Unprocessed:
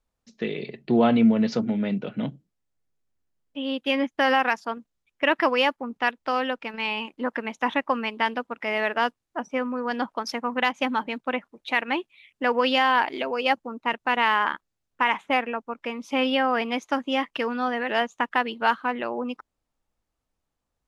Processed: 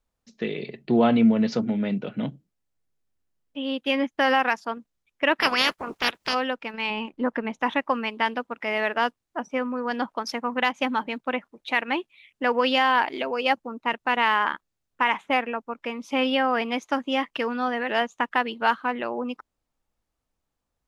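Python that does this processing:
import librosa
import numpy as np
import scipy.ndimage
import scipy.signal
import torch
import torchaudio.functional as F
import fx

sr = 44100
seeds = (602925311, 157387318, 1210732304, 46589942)

y = fx.spec_clip(x, sr, under_db=27, at=(5.4, 6.33), fade=0.02)
y = fx.tilt_eq(y, sr, slope=-2.0, at=(6.9, 7.63))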